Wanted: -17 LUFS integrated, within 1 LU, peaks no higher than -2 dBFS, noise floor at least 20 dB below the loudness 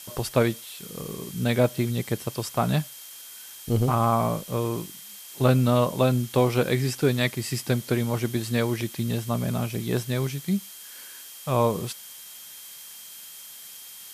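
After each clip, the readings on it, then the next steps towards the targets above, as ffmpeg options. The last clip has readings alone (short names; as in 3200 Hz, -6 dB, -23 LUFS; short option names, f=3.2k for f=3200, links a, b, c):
steady tone 3200 Hz; tone level -51 dBFS; noise floor -43 dBFS; noise floor target -46 dBFS; loudness -25.5 LUFS; peak -7.0 dBFS; loudness target -17.0 LUFS
-> -af "bandreject=f=3.2k:w=30"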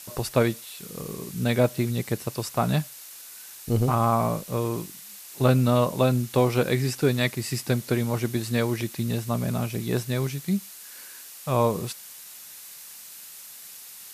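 steady tone none; noise floor -44 dBFS; noise floor target -46 dBFS
-> -af "afftdn=nr=6:nf=-44"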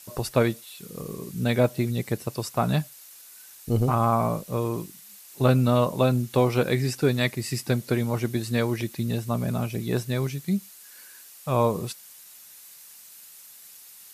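noise floor -48 dBFS; loudness -25.5 LUFS; peak -7.0 dBFS; loudness target -17.0 LUFS
-> -af "volume=8.5dB,alimiter=limit=-2dB:level=0:latency=1"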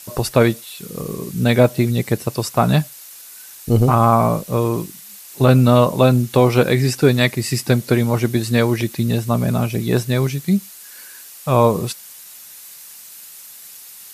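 loudness -17.5 LUFS; peak -2.0 dBFS; noise floor -40 dBFS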